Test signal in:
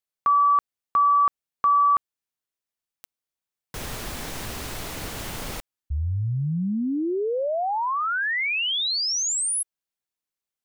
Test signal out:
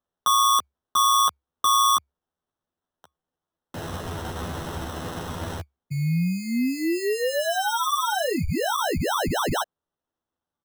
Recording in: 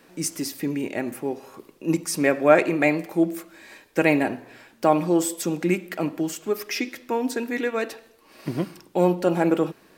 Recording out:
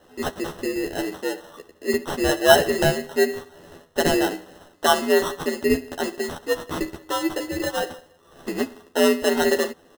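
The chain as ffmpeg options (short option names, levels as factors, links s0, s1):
-filter_complex "[0:a]afreqshift=68,acrusher=samples=19:mix=1:aa=0.000001,asplit=2[s0][s1];[s1]adelay=12,volume=0.631[s2];[s0][s2]amix=inputs=2:normalize=0,volume=0.891"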